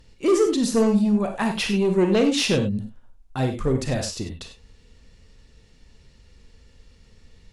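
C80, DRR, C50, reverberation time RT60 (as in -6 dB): 11.5 dB, 5.0 dB, 8.0 dB, no single decay rate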